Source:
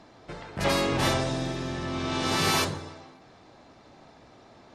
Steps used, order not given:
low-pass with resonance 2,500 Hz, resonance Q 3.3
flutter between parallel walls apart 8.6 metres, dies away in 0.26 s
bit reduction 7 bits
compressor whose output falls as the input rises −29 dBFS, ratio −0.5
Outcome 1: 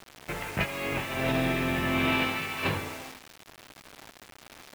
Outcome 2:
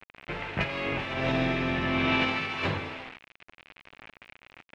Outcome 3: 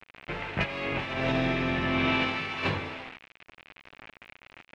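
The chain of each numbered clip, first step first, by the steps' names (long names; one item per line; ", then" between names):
flutter between parallel walls, then compressor whose output falls as the input rises, then low-pass with resonance, then bit reduction
compressor whose output falls as the input rises, then flutter between parallel walls, then bit reduction, then low-pass with resonance
flutter between parallel walls, then compressor whose output falls as the input rises, then bit reduction, then low-pass with resonance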